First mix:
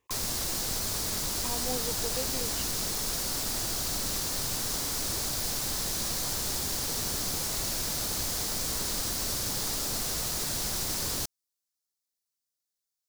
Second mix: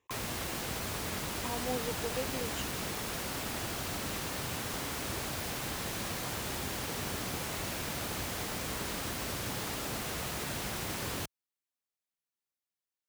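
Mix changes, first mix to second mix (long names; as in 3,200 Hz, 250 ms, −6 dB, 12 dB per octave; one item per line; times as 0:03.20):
background: add high shelf with overshoot 3,600 Hz −8.5 dB, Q 1.5
master: add high-pass filter 62 Hz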